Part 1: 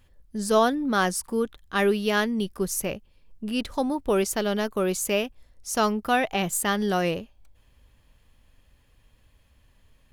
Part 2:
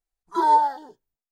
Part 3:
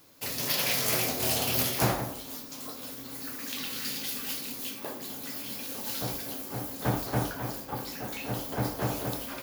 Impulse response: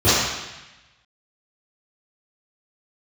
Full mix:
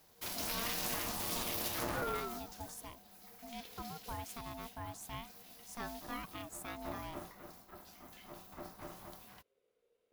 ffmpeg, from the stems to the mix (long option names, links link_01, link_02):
-filter_complex "[0:a]volume=-14.5dB,asplit=2[link_01][link_02];[1:a]acompressor=threshold=-22dB:ratio=6,adelay=1600,volume=2.5dB[link_03];[2:a]highpass=61,volume=-1dB,afade=type=out:start_time=2.19:duration=0.72:silence=0.281838[link_04];[link_02]apad=whole_len=128465[link_05];[link_03][link_05]sidechaincompress=threshold=-46dB:ratio=8:attack=16:release=265[link_06];[link_01][link_06][link_04]amix=inputs=3:normalize=0,aeval=exprs='(tanh(7.94*val(0)+0.65)-tanh(0.65))/7.94':channel_layout=same,aeval=exprs='val(0)*sin(2*PI*470*n/s)':channel_layout=same,alimiter=level_in=0.5dB:limit=-24dB:level=0:latency=1:release=43,volume=-0.5dB"